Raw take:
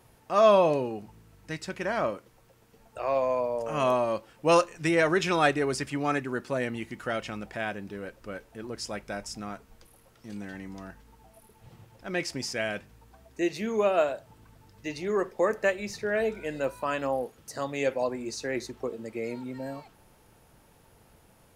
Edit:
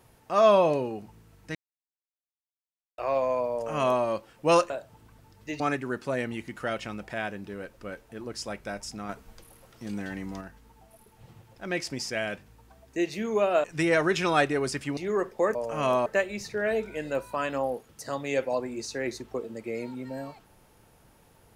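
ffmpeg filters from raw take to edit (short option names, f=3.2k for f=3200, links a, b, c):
-filter_complex "[0:a]asplit=11[a][b][c][d][e][f][g][h][i][j][k];[a]atrim=end=1.55,asetpts=PTS-STARTPTS,afade=t=out:st=1.546:d=0.004:c=hsin[l];[b]atrim=start=1.55:end=2.98,asetpts=PTS-STARTPTS,volume=0[m];[c]atrim=start=2.98:end=4.702,asetpts=PTS-STARTPTS,afade=t=in:d=0.004:c=hsin[n];[d]atrim=start=14.068:end=14.972[o];[e]atrim=start=6.028:end=9.522[p];[f]atrim=start=9.518:end=10.842,asetpts=PTS-STARTPTS,volume=4.5dB[q];[g]atrim=start=10.838:end=14.072[r];[h]atrim=start=4.698:end=6.032[s];[i]atrim=start=14.968:end=15.552[t];[j]atrim=start=3.518:end=4.032[u];[k]atrim=start=15.548[v];[l][m][n]concat=n=3:v=0:a=1[w];[w][o]acrossfade=d=0.004:c1=hsin:c2=hsin[x];[x][p]acrossfade=d=0.004:c1=hsin:c2=hsin[y];[y][q]acrossfade=d=0.004:c1=hsin:c2=hsin[z];[z][r]acrossfade=d=0.004:c1=hsin:c2=hsin[aa];[aa][s]acrossfade=d=0.004:c1=hsin:c2=hsin[ab];[ab][t]acrossfade=d=0.004:c1=hsin:c2=hsin[ac];[ac][u]acrossfade=d=0.004:c1=hsin:c2=hsin[ad];[ad][v]acrossfade=d=0.004:c1=hsin:c2=hsin"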